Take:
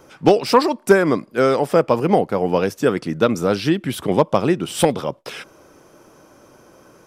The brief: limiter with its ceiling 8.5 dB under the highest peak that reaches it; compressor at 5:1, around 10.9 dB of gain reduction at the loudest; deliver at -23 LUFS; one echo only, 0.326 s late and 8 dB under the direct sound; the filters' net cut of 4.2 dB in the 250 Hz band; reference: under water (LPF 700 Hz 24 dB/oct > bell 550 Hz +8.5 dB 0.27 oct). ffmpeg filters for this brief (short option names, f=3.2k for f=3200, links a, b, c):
-af "equalizer=f=250:t=o:g=-6.5,acompressor=threshold=-22dB:ratio=5,alimiter=limit=-18dB:level=0:latency=1,lowpass=f=700:w=0.5412,lowpass=f=700:w=1.3066,equalizer=f=550:t=o:w=0.27:g=8.5,aecho=1:1:326:0.398,volume=5.5dB"